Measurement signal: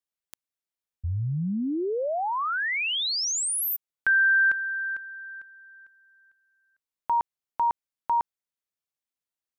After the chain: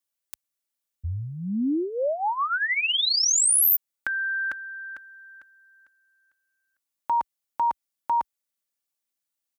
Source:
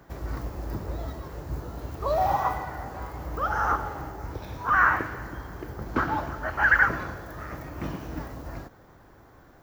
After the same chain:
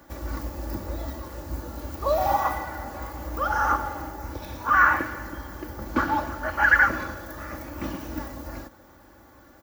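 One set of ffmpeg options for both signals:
-af "highpass=47,highshelf=f=5300:g=8,aecho=1:1:3.5:0.61"

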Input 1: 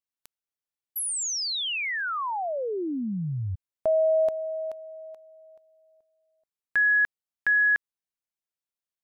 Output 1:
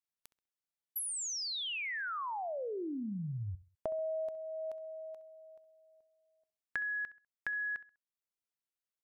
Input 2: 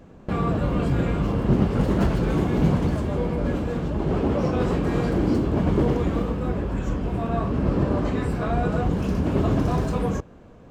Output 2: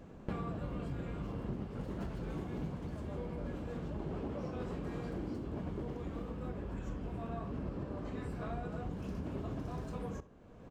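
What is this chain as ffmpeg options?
-filter_complex "[0:a]acompressor=threshold=0.0282:ratio=12:attack=35:release=669:knee=1:detection=rms,asplit=2[s0][s1];[s1]adelay=66,lowpass=f=3700:p=1,volume=0.158,asplit=2[s2][s3];[s3]adelay=66,lowpass=f=3700:p=1,volume=0.33,asplit=2[s4][s5];[s5]adelay=66,lowpass=f=3700:p=1,volume=0.33[s6];[s0][s2][s4][s6]amix=inputs=4:normalize=0,volume=0.562"

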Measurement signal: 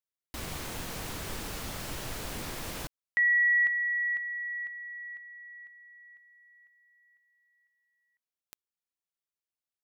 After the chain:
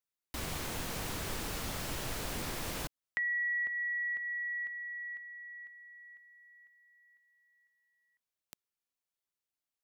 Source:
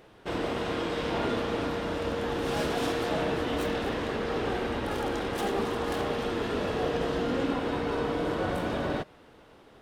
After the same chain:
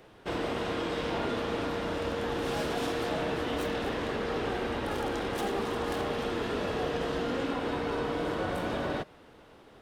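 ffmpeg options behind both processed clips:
-filter_complex "[0:a]acrossover=split=340|870[s0][s1][s2];[s0]acompressor=threshold=0.0178:ratio=4[s3];[s1]acompressor=threshold=0.0224:ratio=4[s4];[s2]acompressor=threshold=0.0178:ratio=4[s5];[s3][s4][s5]amix=inputs=3:normalize=0"

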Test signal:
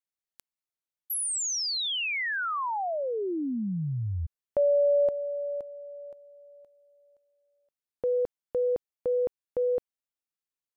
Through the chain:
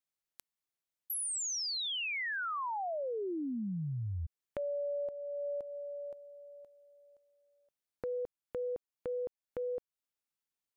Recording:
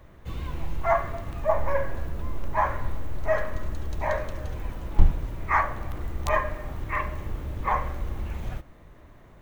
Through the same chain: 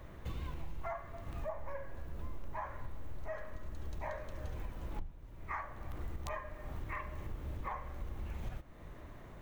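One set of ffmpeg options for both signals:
-af "acompressor=threshold=0.02:ratio=10:attack=1.9:release=801:knee=1:detection=peak"

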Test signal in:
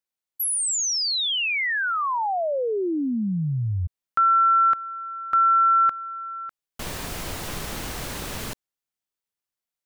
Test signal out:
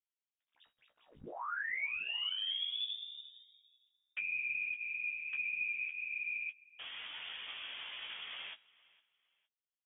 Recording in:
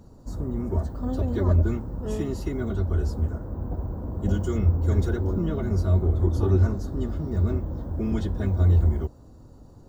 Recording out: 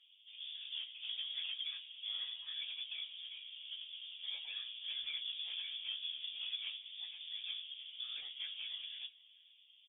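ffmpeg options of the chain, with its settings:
-filter_complex "[0:a]highpass=f=440:w=0.5412,highpass=f=440:w=1.3066,acompressor=threshold=0.0282:ratio=16:attack=2.7:release=151:knee=6:detection=peak,afftfilt=real='hypot(re,im)*cos(2*PI*random(0))':imag='hypot(re,im)*sin(2*PI*random(1))':win_size=512:overlap=0.75,adynamicsmooth=sensitivity=7.5:basefreq=1500,flanger=delay=9:depth=6.9:regen=-11:speed=0.44:shape=triangular,asoftclip=type=tanh:threshold=0.0158,asplit=2[s0][s1];[s1]adelay=18,volume=0.398[s2];[s0][s2]amix=inputs=2:normalize=0,asplit=2[s3][s4];[s4]aecho=0:1:460|920:0.0708|0.0198[s5];[s3][s5]amix=inputs=2:normalize=0,lowpass=f=3200:t=q:w=0.5098,lowpass=f=3200:t=q:w=0.6013,lowpass=f=3200:t=q:w=0.9,lowpass=f=3200:t=q:w=2.563,afreqshift=-3800,volume=1.88"

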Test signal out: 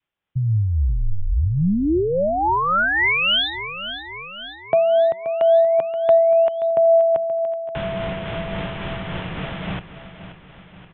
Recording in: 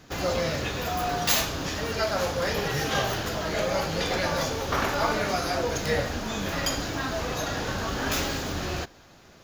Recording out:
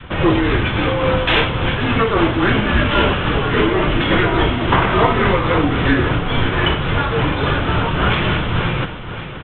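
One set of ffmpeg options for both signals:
-filter_complex "[0:a]adynamicequalizer=threshold=0.00891:dfrequency=780:dqfactor=1.9:tfrequency=780:tqfactor=1.9:attack=5:release=100:ratio=0.375:range=1.5:mode=cutabove:tftype=bell,aresample=8000,aresample=44100,asplit=2[s0][s1];[s1]acompressor=threshold=0.00794:ratio=6,volume=0.891[s2];[s0][s2]amix=inputs=2:normalize=0,afreqshift=-200,acontrast=30,aecho=1:1:528|1056|1584|2112|2640|3168:0.237|0.138|0.0798|0.0463|0.0268|0.0156,tremolo=f=3.6:d=0.31,volume=2.37"

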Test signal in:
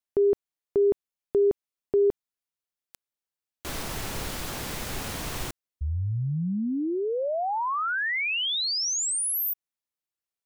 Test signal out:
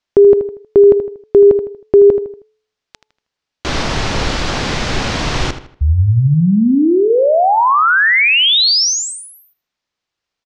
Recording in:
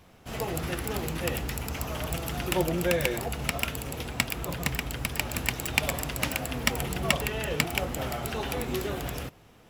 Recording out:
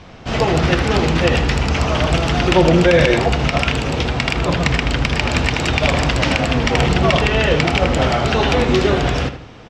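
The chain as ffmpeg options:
-filter_complex "[0:a]lowpass=f=5800:w=0.5412,lowpass=f=5800:w=1.3066,bandreject=f=431.4:t=h:w=4,bandreject=f=862.8:t=h:w=4,asplit=2[s0][s1];[s1]adelay=79,lowpass=f=4600:p=1,volume=0.282,asplit=2[s2][s3];[s3]adelay=79,lowpass=f=4600:p=1,volume=0.38,asplit=2[s4][s5];[s5]adelay=79,lowpass=f=4600:p=1,volume=0.38,asplit=2[s6][s7];[s7]adelay=79,lowpass=f=4600:p=1,volume=0.38[s8];[s2][s4][s6][s8]amix=inputs=4:normalize=0[s9];[s0][s9]amix=inputs=2:normalize=0,alimiter=level_in=7.08:limit=0.891:release=50:level=0:latency=1,volume=0.891"

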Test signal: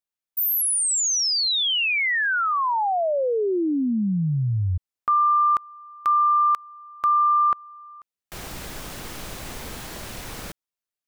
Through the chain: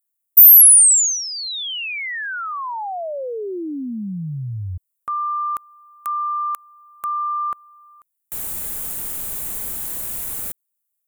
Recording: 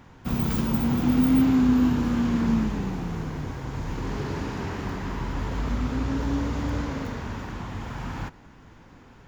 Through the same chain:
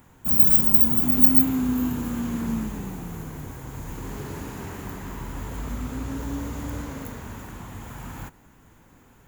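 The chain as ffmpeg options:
-af "aexciter=amount=11.4:drive=1.7:freq=7400,volume=0.596"

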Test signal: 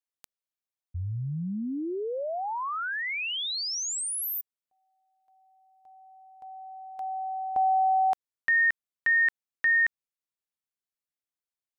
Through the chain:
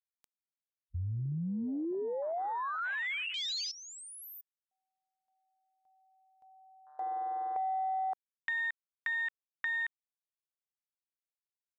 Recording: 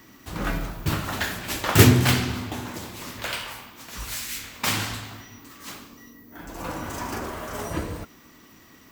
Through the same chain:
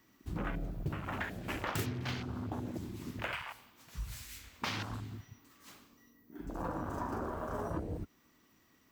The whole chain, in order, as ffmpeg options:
-af "afwtdn=0.0282,acompressor=threshold=0.0282:ratio=12:attack=6:release=374:knee=6:detection=rms"

